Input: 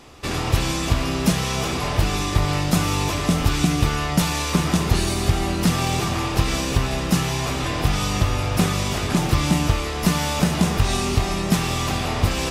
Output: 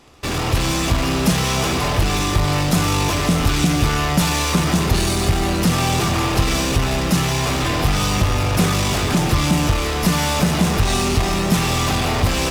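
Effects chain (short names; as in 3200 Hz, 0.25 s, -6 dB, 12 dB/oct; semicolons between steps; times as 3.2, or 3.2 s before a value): in parallel at -9 dB: fuzz box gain 31 dB, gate -37 dBFS; on the sum: AGC gain up to 4.5 dB; gain -3.5 dB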